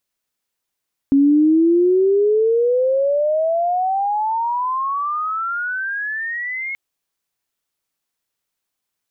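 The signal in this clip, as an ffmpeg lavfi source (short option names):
-f lavfi -i "aevalsrc='pow(10,(-9.5-13.5*t/5.63)/20)*sin(2*PI*273*5.63/(36*log(2)/12)*(exp(36*log(2)/12*t/5.63)-1))':d=5.63:s=44100"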